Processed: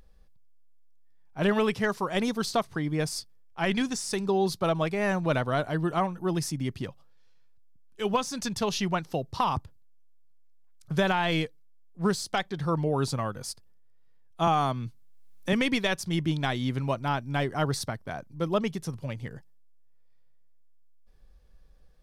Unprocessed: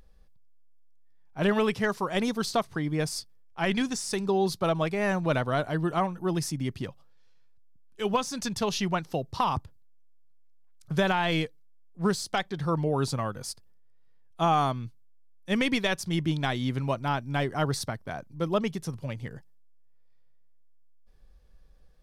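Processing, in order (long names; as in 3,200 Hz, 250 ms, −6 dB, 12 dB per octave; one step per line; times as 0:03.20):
0:14.47–0:15.53: multiband upward and downward compressor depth 70%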